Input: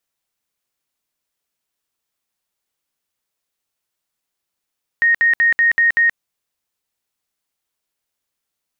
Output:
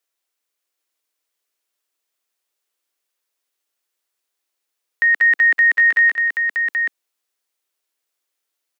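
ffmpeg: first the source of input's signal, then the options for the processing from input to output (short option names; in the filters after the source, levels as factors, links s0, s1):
-f lavfi -i "aevalsrc='0.299*sin(2*PI*1860*mod(t,0.19))*lt(mod(t,0.19),234/1860)':d=1.14:s=44100"
-filter_complex "[0:a]highpass=f=310:w=0.5412,highpass=f=310:w=1.3066,equalizer=f=860:t=o:w=0.77:g=-2.5,asplit=2[s0][s1];[s1]aecho=0:1:182|779:0.188|0.562[s2];[s0][s2]amix=inputs=2:normalize=0"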